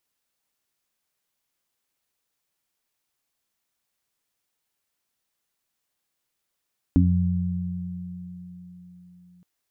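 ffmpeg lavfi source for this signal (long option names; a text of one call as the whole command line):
ffmpeg -f lavfi -i "aevalsrc='0.141*pow(10,-3*t/2.82)*sin(2*PI*89.3*t)+0.119*pow(10,-3*t/4.53)*sin(2*PI*178.6*t)+0.224*pow(10,-3*t/0.29)*sin(2*PI*267.9*t)':duration=2.47:sample_rate=44100" out.wav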